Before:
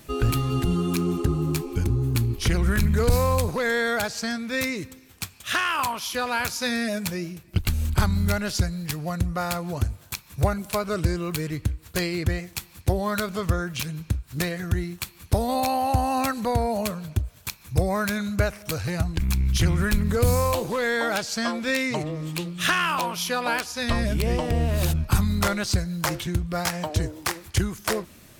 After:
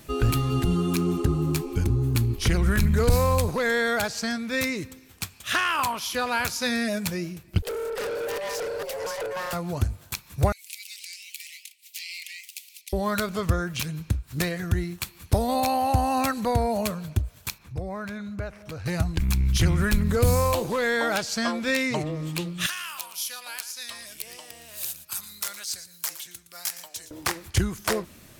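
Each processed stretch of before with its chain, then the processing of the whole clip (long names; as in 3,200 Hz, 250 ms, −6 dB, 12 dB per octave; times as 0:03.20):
0:07.62–0:09.53: delay that plays each chunk backwards 403 ms, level −4 dB + frequency shifter +380 Hz + tube saturation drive 28 dB, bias 0.3
0:10.52–0:12.93: Butterworth high-pass 2,100 Hz 72 dB per octave + downward compressor, threshold −33 dBFS + delay with pitch and tempo change per echo 146 ms, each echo +2 semitones, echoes 2, each echo −6 dB
0:17.58–0:18.86: low-pass filter 2,200 Hz 6 dB per octave + downward compressor 1.5 to 1, threshold −45 dBFS
0:22.66–0:27.11: first difference + single-tap delay 115 ms −14 dB
whole clip: no processing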